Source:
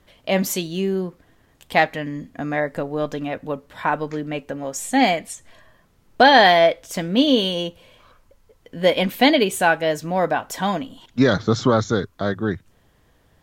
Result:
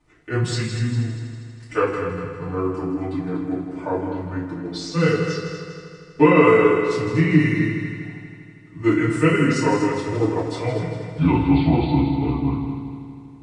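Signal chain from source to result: delay-line pitch shifter -8 st; on a send: multi-head echo 80 ms, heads second and third, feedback 57%, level -9 dB; on the sum: FDN reverb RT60 0.45 s, low-frequency decay 1.5×, high-frequency decay 0.95×, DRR -9 dB; gain -12 dB

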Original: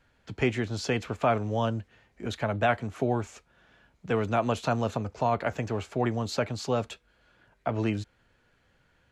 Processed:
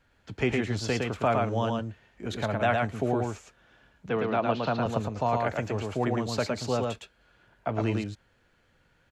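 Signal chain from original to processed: 4.09–4.86 elliptic band-pass 130–4500 Hz; on a send: echo 0.111 s -3 dB; on the sum: gain -1 dB

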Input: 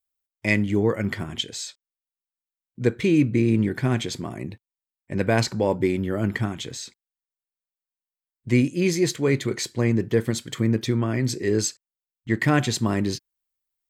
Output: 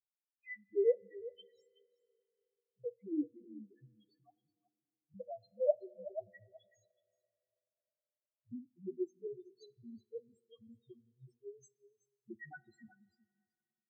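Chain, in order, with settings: per-bin expansion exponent 2; high shelf 4900 Hz +9.5 dB; notches 60/120/180 Hz; transient shaper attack +10 dB, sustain -10 dB; loudest bins only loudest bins 1; wah 2.1 Hz 390–1200 Hz, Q 14; on a send: echo 0.374 s -17 dB; on the sum: two-slope reverb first 0.27 s, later 3 s, from -18 dB, DRR 18.5 dB; gain +7 dB

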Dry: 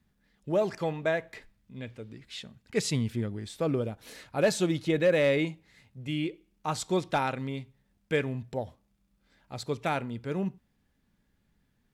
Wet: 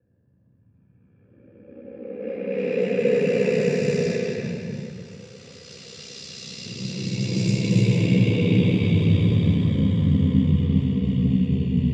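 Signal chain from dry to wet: Doppler pass-by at 2.71, 29 m/s, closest 4 m; Paulstretch 32×, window 0.10 s, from 2.44; low-pass opened by the level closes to 560 Hz, open at -24 dBFS; ring modulator 32 Hz; reverb RT60 0.85 s, pre-delay 3 ms, DRR 3.5 dB

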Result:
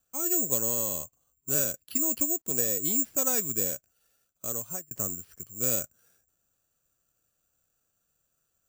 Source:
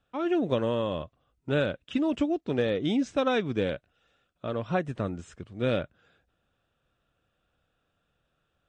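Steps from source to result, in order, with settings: 2.03–3.74 CVSD 64 kbps; careless resampling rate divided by 6×, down filtered, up zero stuff; 4.51–4.91 fade out; gain -8.5 dB

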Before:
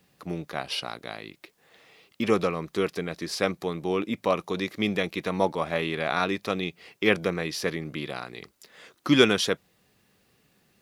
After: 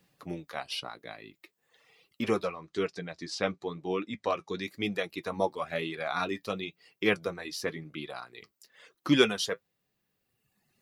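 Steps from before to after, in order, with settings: 2.51–4.63 LPF 7900 Hz 24 dB/oct; reverb removal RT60 1.5 s; flange 1 Hz, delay 5.7 ms, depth 3.7 ms, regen -50%

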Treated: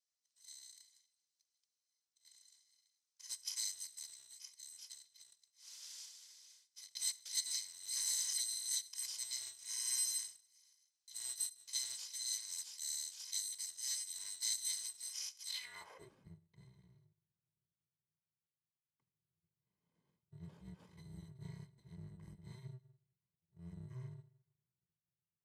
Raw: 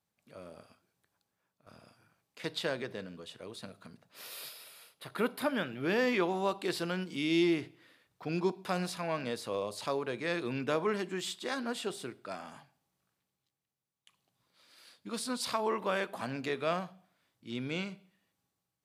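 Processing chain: FFT order left unsorted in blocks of 128 samples; band-pass sweep 7500 Hz -> 230 Hz, 11.44–12.01; speed mistake 45 rpm record played at 33 rpm; gain +1 dB

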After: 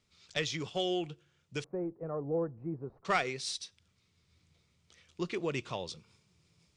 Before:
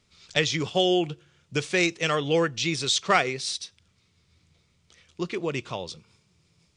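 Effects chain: one diode to ground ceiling -6 dBFS; 1.64–3.05 inverse Chebyshev low-pass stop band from 3100 Hz, stop band 60 dB; vocal rider within 4 dB 2 s; gain -8 dB

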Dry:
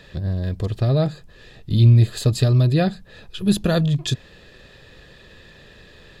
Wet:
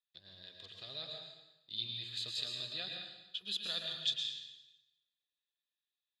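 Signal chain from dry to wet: gate -38 dBFS, range -38 dB; band-pass 3600 Hz, Q 3.7; plate-style reverb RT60 1 s, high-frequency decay 0.95×, pre-delay 0.1 s, DRR 1.5 dB; gain -3.5 dB

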